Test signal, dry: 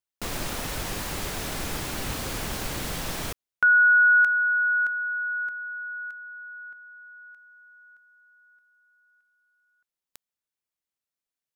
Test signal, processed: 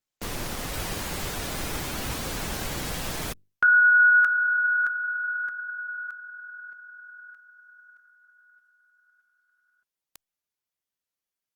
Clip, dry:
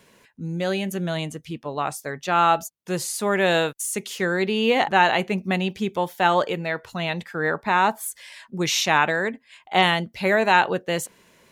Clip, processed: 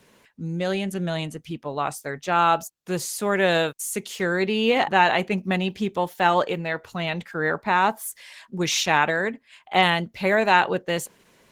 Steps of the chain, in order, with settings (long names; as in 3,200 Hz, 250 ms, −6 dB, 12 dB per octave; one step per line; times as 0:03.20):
Opus 16 kbit/s 48,000 Hz